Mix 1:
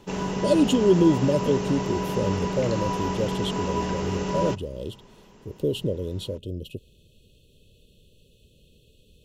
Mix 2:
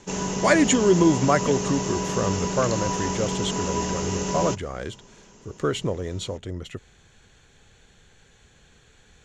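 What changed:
speech: remove brick-wall FIR band-stop 640–2500 Hz; master: add synth low-pass 6800 Hz, resonance Q 5.1

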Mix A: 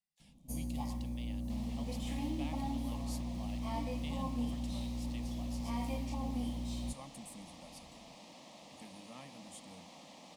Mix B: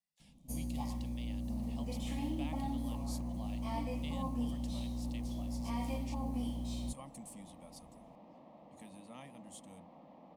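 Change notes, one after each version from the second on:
second sound: add LPF 1000 Hz 12 dB/oct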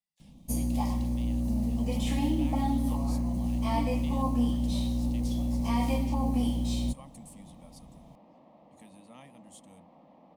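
first sound +10.0 dB

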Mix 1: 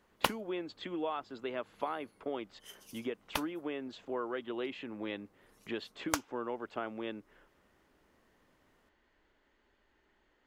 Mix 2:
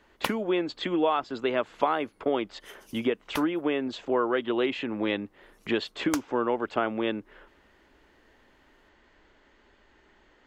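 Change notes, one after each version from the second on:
speech +11.5 dB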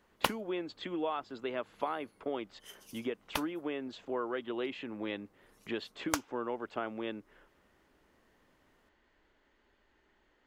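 speech -10.0 dB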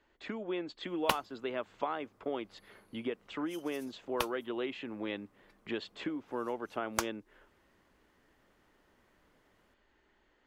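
background: entry +0.85 s

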